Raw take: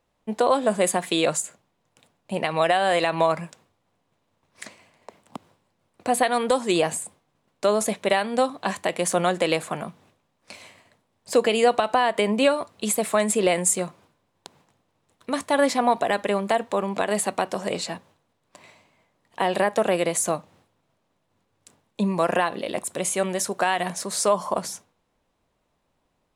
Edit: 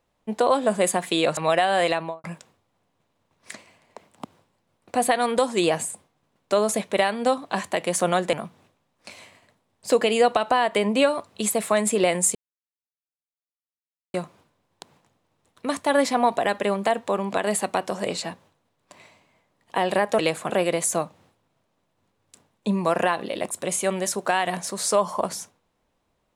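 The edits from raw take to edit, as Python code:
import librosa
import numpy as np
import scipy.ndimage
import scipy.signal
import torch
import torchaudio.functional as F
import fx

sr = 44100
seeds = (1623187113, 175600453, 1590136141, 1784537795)

y = fx.studio_fade_out(x, sr, start_s=2.99, length_s=0.37)
y = fx.edit(y, sr, fx.cut(start_s=1.37, length_s=1.12),
    fx.move(start_s=9.45, length_s=0.31, to_s=19.83),
    fx.insert_silence(at_s=13.78, length_s=1.79), tone=tone)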